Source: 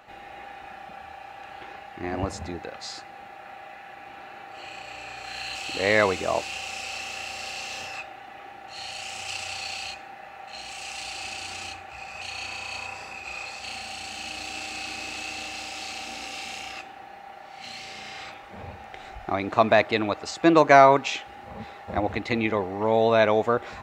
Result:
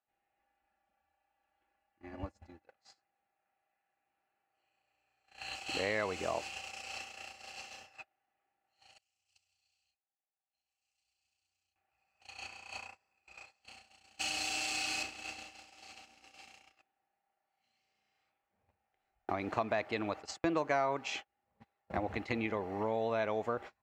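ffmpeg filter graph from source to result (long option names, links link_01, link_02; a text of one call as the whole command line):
ffmpeg -i in.wav -filter_complex "[0:a]asettb=1/sr,asplit=3[link_01][link_02][link_03];[link_01]atrim=end=0.394[link_04];[link_02]atrim=start=0.39:end=2.68,asetpts=PTS-STARTPTS,afade=type=in:duration=0.004:curve=qsin,afade=type=out:start_time=2.286:duration=0.004:curve=qsin,lowshelf=frequency=72:gain=9.5,aecho=1:1:3.5:0.55,atrim=end_sample=100989,acompressor=threshold=-33dB:ratio=3:attack=3.2:release=140:knee=1:detection=peak[link_05];[link_03]atrim=start=2.676[link_06];[link_04][link_05]acrossfade=duration=0.004:curve1=hsin:curve2=qsin[link_07];[link_07][link_06]acrossfade=duration=0.004:curve1=qsin:curve2=hsin,asettb=1/sr,asplit=3[link_08][link_09][link_10];[link_08]atrim=end=8.984[link_11];[link_09]atrim=start=8.98:end=11.76,asetpts=PTS-STARTPTS,afade=type=in:duration=0.004:curve=qsin,afade=type=out:start_time=2.776:duration=0.004:curve=qsin,agate=range=-33dB:threshold=-32dB:ratio=3:release=100:detection=peak,acrossover=split=130|3000[link_12][link_13][link_14];[link_13]acompressor=threshold=-60dB:ratio=2:attack=3.2:release=140:knee=2.83:detection=peak[link_15];[link_12][link_15][link_14]amix=inputs=3:normalize=0[link_16];[link_10]atrim=start=11.756[link_17];[link_11][link_16]acrossfade=duration=0.004:curve1=hsin:curve2=qsin[link_18];[link_18][link_17]acrossfade=duration=0.004:curve1=qsin:curve2=hsin,asettb=1/sr,asplit=3[link_19][link_20][link_21];[link_19]atrim=end=14.194[link_22];[link_20]atrim=start=14.19:end=15.03,asetpts=PTS-STARTPTS,afade=type=in:duration=0.004:curve=qsin,afade=type=out:start_time=0.836:duration=0.004:curve=qsin,highshelf=frequency=2500:gain=8,aecho=1:1:6.7:0.4,atrim=end_sample=37044[link_23];[link_21]atrim=start=15.026[link_24];[link_22][link_23]acrossfade=duration=0.004:curve1=hsin:curve2=qsin[link_25];[link_25][link_24]acrossfade=duration=0.004:curve1=qsin:curve2=hsin,agate=range=-41dB:threshold=-32dB:ratio=16:detection=peak,bandreject=frequency=3700:width=12,acompressor=threshold=-35dB:ratio=3" out.wav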